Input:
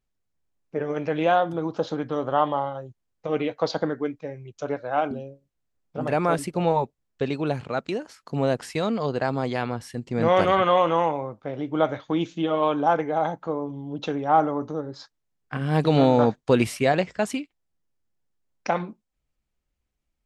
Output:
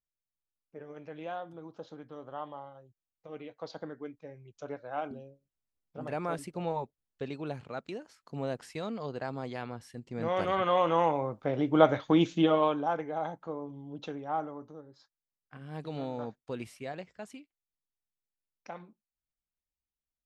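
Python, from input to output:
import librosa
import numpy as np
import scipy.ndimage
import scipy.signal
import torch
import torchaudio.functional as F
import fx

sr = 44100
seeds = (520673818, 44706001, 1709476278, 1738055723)

y = fx.gain(x, sr, db=fx.line((3.44, -18.5), (4.38, -11.5), (10.34, -11.5), (11.44, 1.0), (12.45, 1.0), (12.87, -10.0), (13.96, -10.0), (14.89, -19.0)))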